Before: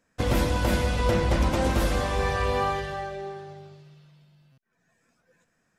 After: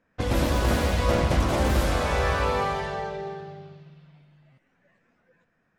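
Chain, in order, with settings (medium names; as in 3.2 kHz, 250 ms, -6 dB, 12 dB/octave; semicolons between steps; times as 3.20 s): level-controlled noise filter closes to 2.7 kHz, open at -23.5 dBFS; in parallel at -1 dB: compression, threshold -31 dBFS, peak gain reduction 12 dB; on the sum: ever faster or slower copies 135 ms, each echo +2 st, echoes 3; trim -4 dB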